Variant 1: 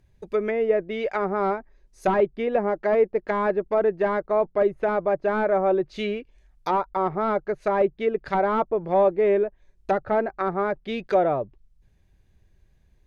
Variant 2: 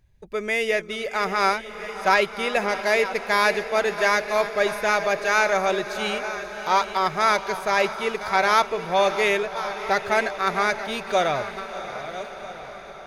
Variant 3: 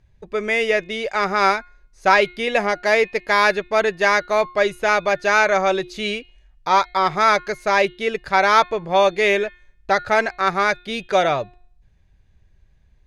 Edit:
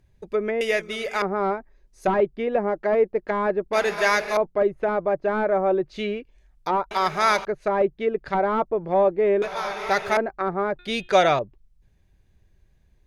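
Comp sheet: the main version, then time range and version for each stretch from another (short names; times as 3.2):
1
0.61–1.22 from 2
3.73–4.37 from 2
6.91–7.45 from 2
9.42–10.17 from 2
10.79–11.39 from 3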